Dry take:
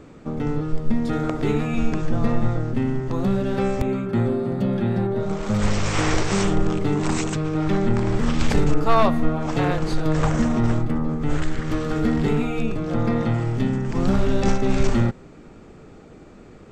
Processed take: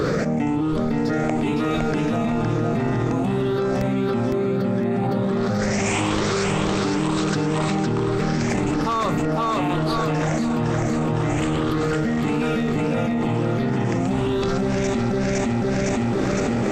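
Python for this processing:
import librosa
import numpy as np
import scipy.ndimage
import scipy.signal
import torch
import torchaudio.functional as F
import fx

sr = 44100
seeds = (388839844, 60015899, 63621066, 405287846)

p1 = fx.spec_ripple(x, sr, per_octave=0.6, drift_hz=1.1, depth_db=12)
p2 = fx.highpass(p1, sr, hz=140.0, slope=6)
p3 = p2 + fx.echo_feedback(p2, sr, ms=510, feedback_pct=37, wet_db=-3.0, dry=0)
p4 = fx.env_flatten(p3, sr, amount_pct=100)
y = p4 * 10.0 ** (-8.5 / 20.0)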